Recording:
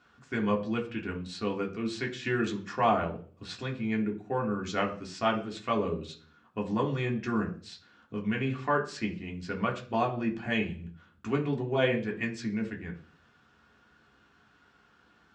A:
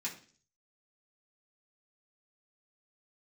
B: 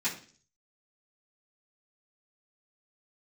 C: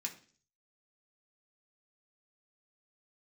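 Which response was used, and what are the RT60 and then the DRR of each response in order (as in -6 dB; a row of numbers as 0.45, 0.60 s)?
C; 0.45, 0.45, 0.45 s; -6.5, -12.5, -0.5 dB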